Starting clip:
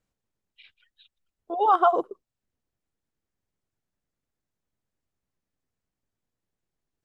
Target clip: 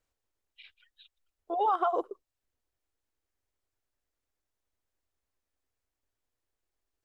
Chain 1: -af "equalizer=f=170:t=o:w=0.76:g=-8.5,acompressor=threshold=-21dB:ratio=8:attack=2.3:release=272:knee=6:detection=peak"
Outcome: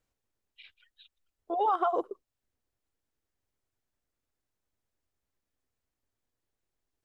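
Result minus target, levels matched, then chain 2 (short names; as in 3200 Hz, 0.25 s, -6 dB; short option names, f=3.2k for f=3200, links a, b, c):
125 Hz band +4.5 dB
-af "equalizer=f=170:t=o:w=0.76:g=-19,acompressor=threshold=-21dB:ratio=8:attack=2.3:release=272:knee=6:detection=peak"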